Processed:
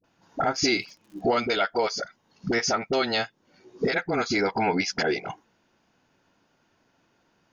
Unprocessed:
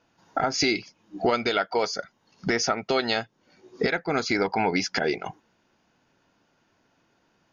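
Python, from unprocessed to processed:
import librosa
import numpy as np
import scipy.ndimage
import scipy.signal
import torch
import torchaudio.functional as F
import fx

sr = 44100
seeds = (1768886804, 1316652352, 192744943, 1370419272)

y = fx.dispersion(x, sr, late='highs', ms=41.0, hz=530.0)
y = fx.dmg_crackle(y, sr, seeds[0], per_s=fx.line((0.52, 33.0), (1.2, 130.0)), level_db=-44.0, at=(0.52, 1.2), fade=0.02)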